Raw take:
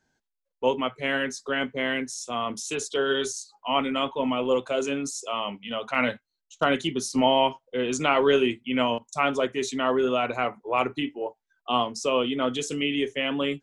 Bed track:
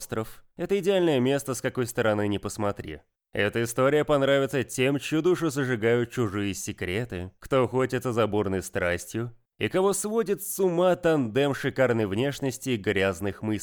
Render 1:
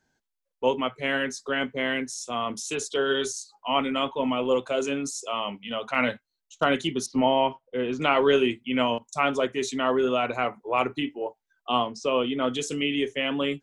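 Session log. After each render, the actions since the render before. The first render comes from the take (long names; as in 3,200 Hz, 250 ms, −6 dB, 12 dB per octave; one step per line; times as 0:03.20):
0:07.06–0:08.02: high-frequency loss of the air 280 metres
0:11.79–0:12.44: high-frequency loss of the air 110 metres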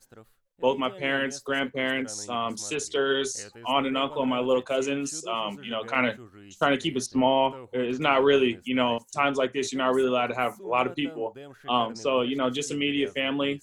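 mix in bed track −20.5 dB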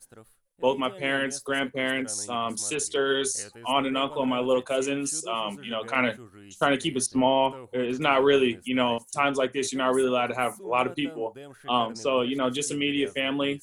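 parametric band 9,800 Hz +14.5 dB 0.38 octaves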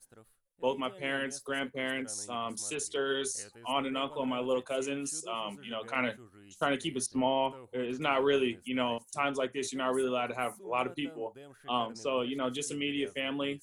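level −7 dB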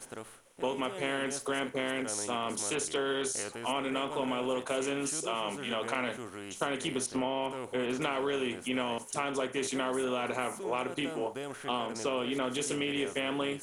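compressor on every frequency bin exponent 0.6
downward compressor, threshold −28 dBFS, peak gain reduction 7.5 dB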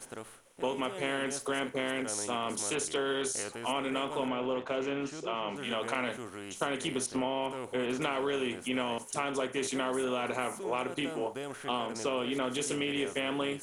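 0:04.28–0:05.56: high-frequency loss of the air 170 metres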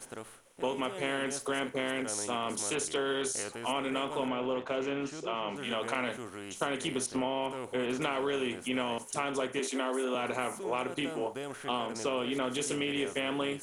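0:09.59–0:10.15: elliptic high-pass filter 240 Hz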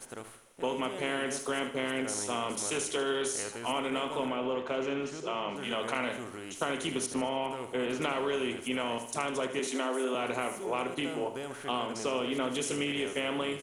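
repeating echo 76 ms, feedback 42%, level −10 dB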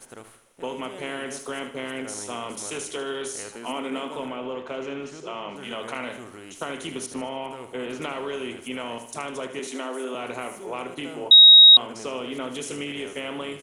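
0:03.55–0:04.16: high-pass with resonance 210 Hz, resonance Q 1.6
0:11.31–0:11.77: beep over 3,790 Hz −6.5 dBFS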